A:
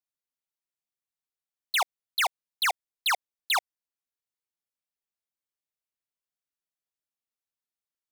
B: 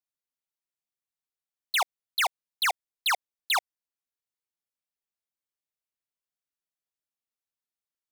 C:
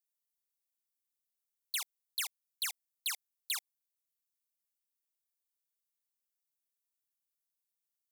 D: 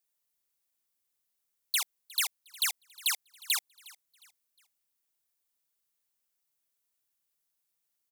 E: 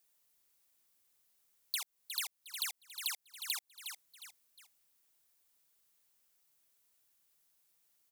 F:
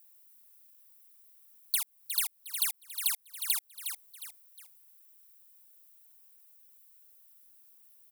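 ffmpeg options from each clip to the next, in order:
-af anull
-af "aderivative,asoftclip=type=tanh:threshold=-27.5dB,equalizer=f=670:w=1.3:g=-8.5,volume=2dB"
-af "aecho=1:1:359|718|1077:0.0794|0.0294|0.0109,volume=7dB"
-af "alimiter=limit=-24dB:level=0:latency=1,acompressor=threshold=-44dB:ratio=3,volume=7dB"
-af "aexciter=amount=3.3:drive=3.9:freq=9k,volume=2.5dB"

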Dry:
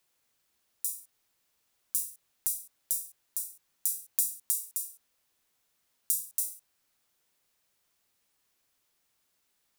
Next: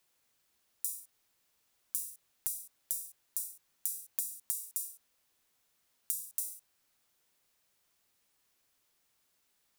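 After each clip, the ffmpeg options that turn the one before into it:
-af "acompressor=threshold=-30dB:ratio=10"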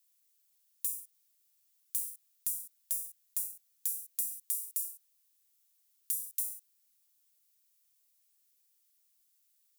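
-af "aeval=exprs='0.211*(abs(mod(val(0)/0.211+3,4)-2)-1)':c=same,aderivative,asoftclip=type=tanh:threshold=-16dB"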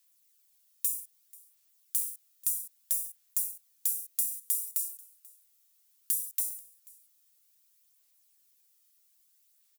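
-af "aphaser=in_gain=1:out_gain=1:delay=1.6:decay=0.31:speed=0.62:type=sinusoidal,aecho=1:1:487:0.0668,volume=4dB"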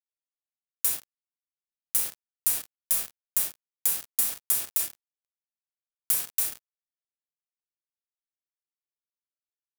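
-af "acrusher=bits=4:mix=0:aa=0.5,volume=4.5dB"

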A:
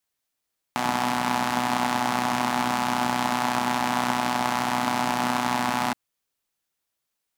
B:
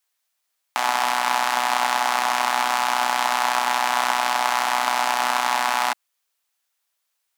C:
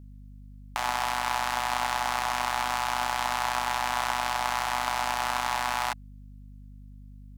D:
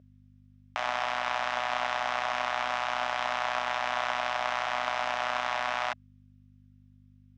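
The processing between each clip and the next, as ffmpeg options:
-af "highpass=710,volume=5.5dB"
-af "aeval=exprs='val(0)+0.0126*(sin(2*PI*50*n/s)+sin(2*PI*2*50*n/s)/2+sin(2*PI*3*50*n/s)/3+sin(2*PI*4*50*n/s)/4+sin(2*PI*5*50*n/s)/5)':c=same,volume=-7dB"
-af "highpass=130,equalizer=f=140:t=q:w=4:g=-7,equalizer=f=200:t=q:w=4:g=-8,equalizer=f=330:t=q:w=4:g=-9,equalizer=f=620:t=q:w=4:g=6,equalizer=f=890:t=q:w=4:g=-7,equalizer=f=4.4k:t=q:w=4:g=-8,lowpass=f=5.1k:w=0.5412,lowpass=f=5.1k:w=1.3066"

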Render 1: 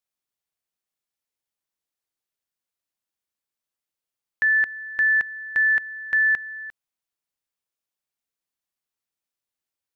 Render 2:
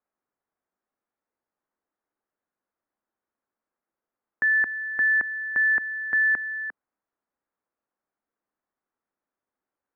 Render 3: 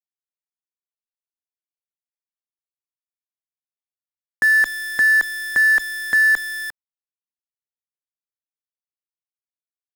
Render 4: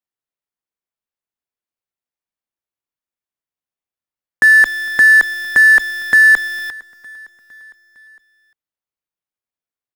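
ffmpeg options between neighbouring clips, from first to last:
-filter_complex "[0:a]lowpass=f=1.6k:w=0.5412,lowpass=f=1.6k:w=1.3066,acrossover=split=310[a][b];[b]alimiter=level_in=2dB:limit=-24dB:level=0:latency=1:release=34,volume=-2dB[c];[a][c]amix=inputs=2:normalize=0,lowshelf=f=180:t=q:w=1.5:g=-6.5,volume=8.5dB"
-af "acontrast=90,aeval=exprs='0.335*(cos(1*acos(clip(val(0)/0.335,-1,1)))-cos(1*PI/2))+0.0299*(cos(3*acos(clip(val(0)/0.335,-1,1)))-cos(3*PI/2))+0.00211*(cos(4*acos(clip(val(0)/0.335,-1,1)))-cos(4*PI/2))+0.015*(cos(7*acos(clip(val(0)/0.335,-1,1)))-cos(7*PI/2))':c=same,acrusher=bits=6:dc=4:mix=0:aa=0.000001"
-filter_complex "[0:a]asplit=2[a][b];[b]adynamicsmooth=sensitivity=4.5:basefreq=3.6k,volume=1.5dB[c];[a][c]amix=inputs=2:normalize=0,aecho=1:1:457|914|1371|1828:0.0708|0.0425|0.0255|0.0153"

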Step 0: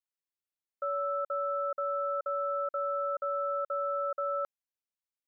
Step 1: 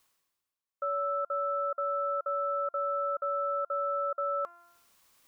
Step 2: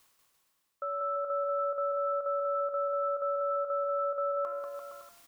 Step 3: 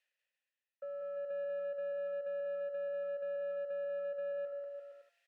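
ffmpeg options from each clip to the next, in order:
-af "equalizer=f=1.1k:w=5.9:g=8.5,bandreject=f=345.3:t=h:w=4,bandreject=f=690.6:t=h:w=4,bandreject=f=1.0359k:t=h:w=4,bandreject=f=1.3812k:t=h:w=4,bandreject=f=1.7265k:t=h:w=4,bandreject=f=2.0718k:t=h:w=4,bandreject=f=2.4171k:t=h:w=4,bandreject=f=2.7624k:t=h:w=4,areverse,acompressor=mode=upward:threshold=-42dB:ratio=2.5,areverse"
-filter_complex "[0:a]alimiter=level_in=9dB:limit=-24dB:level=0:latency=1:release=14,volume=-9dB,asplit=2[a][b];[b]aecho=0:1:190|342|463.6|560.9|638.7:0.631|0.398|0.251|0.158|0.1[c];[a][c]amix=inputs=2:normalize=0,volume=5dB"
-filter_complex "[0:a]acrossover=split=710[a][b];[a]aeval=exprs='sgn(val(0))*max(abs(val(0))-0.00112,0)':c=same[c];[c][b]amix=inputs=2:normalize=0,asplit=3[d][e][f];[d]bandpass=f=530:t=q:w=8,volume=0dB[g];[e]bandpass=f=1.84k:t=q:w=8,volume=-6dB[h];[f]bandpass=f=2.48k:t=q:w=8,volume=-9dB[i];[g][h][i]amix=inputs=3:normalize=0,asoftclip=type=tanh:threshold=-35dB,volume=1dB"

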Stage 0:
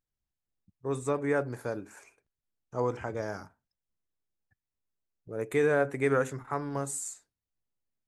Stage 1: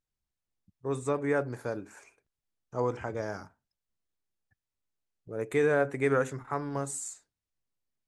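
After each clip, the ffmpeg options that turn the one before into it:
-af "lowpass=10k"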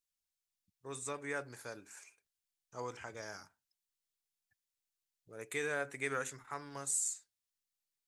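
-af "tiltshelf=f=1.5k:g=-10,volume=-6dB"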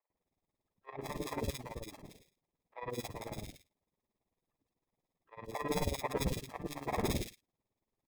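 -filter_complex "[0:a]acrusher=samples=30:mix=1:aa=0.000001,tremolo=f=18:d=0.85,acrossover=split=570|2300[a][b][c];[a]adelay=100[d];[c]adelay=170[e];[d][b][e]amix=inputs=3:normalize=0,volume=7.5dB"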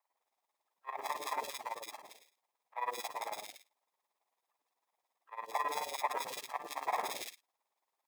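-af "alimiter=level_in=4dB:limit=-24dB:level=0:latency=1:release=38,volume=-4dB,acrusher=bits=8:mode=log:mix=0:aa=0.000001,highpass=f=870:t=q:w=1.8,volume=4dB"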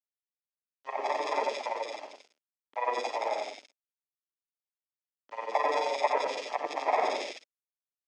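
-af "aeval=exprs='val(0)*gte(abs(val(0)),0.00211)':c=same,highpass=f=230:w=0.5412,highpass=f=230:w=1.3066,equalizer=f=270:t=q:w=4:g=4,equalizer=f=420:t=q:w=4:g=3,equalizer=f=590:t=q:w=4:g=7,equalizer=f=1.1k:t=q:w=4:g=-7,equalizer=f=1.7k:t=q:w=4:g=-4,equalizer=f=3.9k:t=q:w=4:g=-8,lowpass=f=5.4k:w=0.5412,lowpass=f=5.4k:w=1.3066,aecho=1:1:89:0.668,volume=7.5dB"

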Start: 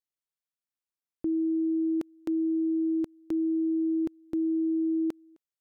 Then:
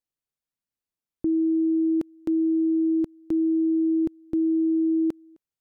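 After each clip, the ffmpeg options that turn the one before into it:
-af "lowshelf=f=410:g=9.5,volume=-1dB"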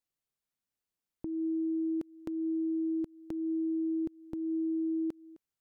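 -af "acompressor=threshold=-30dB:ratio=12,alimiter=level_in=2dB:limit=-24dB:level=0:latency=1:release=208,volume=-2dB"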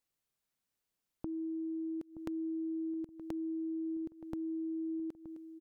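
-filter_complex "[0:a]acompressor=threshold=-41dB:ratio=5,asplit=2[a][b];[b]adelay=923,lowpass=f=800:p=1,volume=-12dB,asplit=2[c][d];[d]adelay=923,lowpass=f=800:p=1,volume=0.35,asplit=2[e][f];[f]adelay=923,lowpass=f=800:p=1,volume=0.35,asplit=2[g][h];[h]adelay=923,lowpass=f=800:p=1,volume=0.35[i];[a][c][e][g][i]amix=inputs=5:normalize=0,volume=3dB"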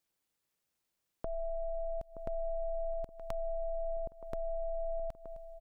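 -af "aeval=exprs='val(0)*sin(2*PI*340*n/s)':c=same,volume=5.5dB"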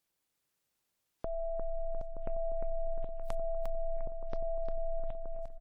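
-af "aecho=1:1:352|704|1056|1408|1760:0.531|0.207|0.0807|0.0315|0.0123,volume=1dB" -ar 48000 -c:a wmav2 -b:a 128k

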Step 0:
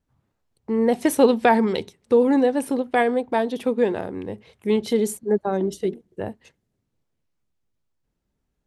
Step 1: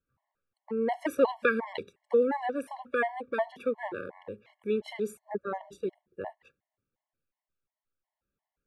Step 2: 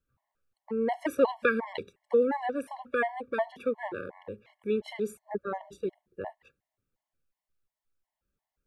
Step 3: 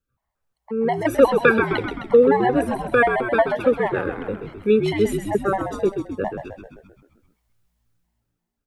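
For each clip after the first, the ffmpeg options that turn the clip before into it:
-filter_complex "[0:a]acrossover=split=560 2500:gain=0.251 1 0.158[a][b][c];[a][b][c]amix=inputs=3:normalize=0,afftfilt=real='re*gt(sin(2*PI*2.8*pts/sr)*(1-2*mod(floor(b*sr/1024/560),2)),0)':imag='im*gt(sin(2*PI*2.8*pts/sr)*(1-2*mod(floor(b*sr/1024/560),2)),0)':win_size=1024:overlap=0.75"
-af "lowshelf=f=66:g=9.5"
-filter_complex "[0:a]dynaudnorm=f=140:g=11:m=12dB,asplit=2[a][b];[b]asplit=8[c][d][e][f][g][h][i][j];[c]adelay=130,afreqshift=-58,volume=-7dB[k];[d]adelay=260,afreqshift=-116,volume=-11.6dB[l];[e]adelay=390,afreqshift=-174,volume=-16.2dB[m];[f]adelay=520,afreqshift=-232,volume=-20.7dB[n];[g]adelay=650,afreqshift=-290,volume=-25.3dB[o];[h]adelay=780,afreqshift=-348,volume=-29.9dB[p];[i]adelay=910,afreqshift=-406,volume=-34.5dB[q];[j]adelay=1040,afreqshift=-464,volume=-39.1dB[r];[k][l][m][n][o][p][q][r]amix=inputs=8:normalize=0[s];[a][s]amix=inputs=2:normalize=0"

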